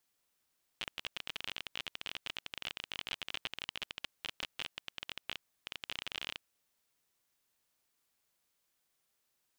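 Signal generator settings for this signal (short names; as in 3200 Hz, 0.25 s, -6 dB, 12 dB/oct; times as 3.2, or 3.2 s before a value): random clicks 28/s -21.5 dBFS 5.59 s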